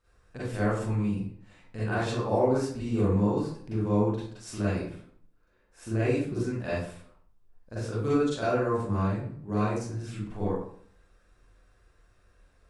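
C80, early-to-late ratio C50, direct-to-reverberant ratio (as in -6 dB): 3.5 dB, -2.5 dB, -11.0 dB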